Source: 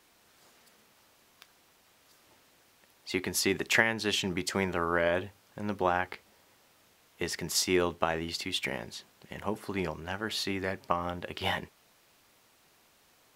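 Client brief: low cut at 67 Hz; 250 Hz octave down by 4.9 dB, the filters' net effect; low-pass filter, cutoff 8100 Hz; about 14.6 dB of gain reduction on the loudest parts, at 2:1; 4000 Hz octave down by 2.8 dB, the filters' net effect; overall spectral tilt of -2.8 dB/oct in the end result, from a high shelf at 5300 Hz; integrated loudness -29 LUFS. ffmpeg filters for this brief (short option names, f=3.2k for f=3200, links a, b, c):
-af "highpass=67,lowpass=8.1k,equalizer=f=250:t=o:g=-7.5,equalizer=f=4k:t=o:g=-5,highshelf=f=5.3k:g=3.5,acompressor=threshold=-50dB:ratio=2,volume=16dB"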